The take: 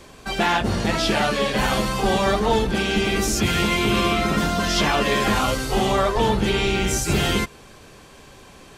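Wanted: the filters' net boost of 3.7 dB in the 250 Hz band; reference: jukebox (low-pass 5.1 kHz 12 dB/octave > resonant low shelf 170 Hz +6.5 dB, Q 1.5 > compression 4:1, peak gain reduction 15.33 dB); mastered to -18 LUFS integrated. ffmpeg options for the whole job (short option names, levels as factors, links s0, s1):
-af "lowpass=5100,lowshelf=f=170:t=q:w=1.5:g=6.5,equalizer=f=250:t=o:g=5.5,acompressor=threshold=0.0355:ratio=4,volume=4.22"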